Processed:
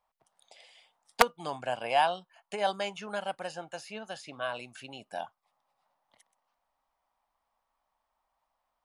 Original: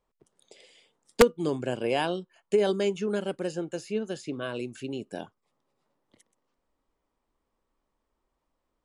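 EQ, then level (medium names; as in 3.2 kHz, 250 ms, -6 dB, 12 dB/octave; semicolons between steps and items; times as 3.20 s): resonant low shelf 540 Hz -11 dB, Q 3; peaking EQ 7.3 kHz -6 dB 0.39 oct; 0.0 dB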